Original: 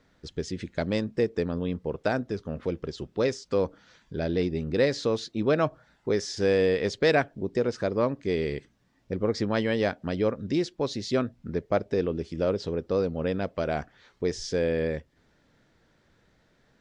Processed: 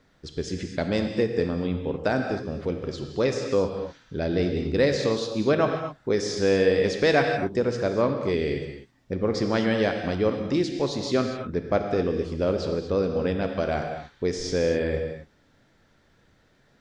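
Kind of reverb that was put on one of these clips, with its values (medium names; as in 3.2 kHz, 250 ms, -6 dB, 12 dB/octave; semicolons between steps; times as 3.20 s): gated-style reverb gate 280 ms flat, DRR 4 dB; trim +1.5 dB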